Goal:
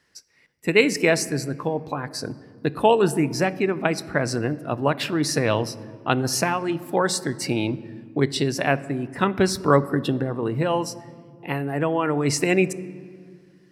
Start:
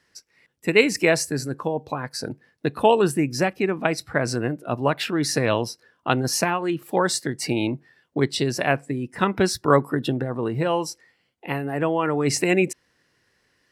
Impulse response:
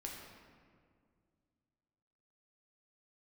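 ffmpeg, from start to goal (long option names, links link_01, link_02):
-filter_complex "[0:a]asplit=2[link_01][link_02];[1:a]atrim=start_sample=2205,lowshelf=frequency=360:gain=7.5[link_03];[link_02][link_03]afir=irnorm=-1:irlink=0,volume=-12dB[link_04];[link_01][link_04]amix=inputs=2:normalize=0,volume=-1.5dB"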